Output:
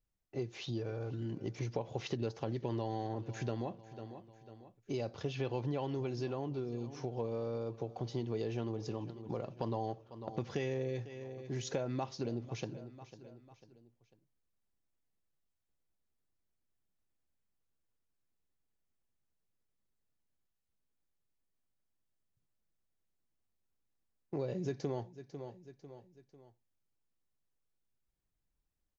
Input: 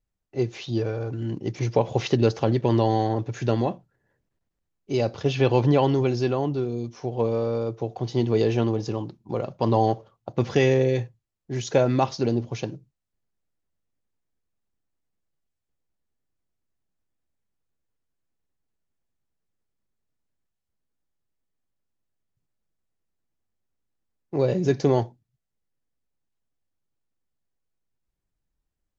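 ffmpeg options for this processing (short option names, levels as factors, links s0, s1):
-af "aecho=1:1:497|994|1491:0.0891|0.0383|0.0165,acompressor=threshold=0.0224:ratio=3,volume=0.596"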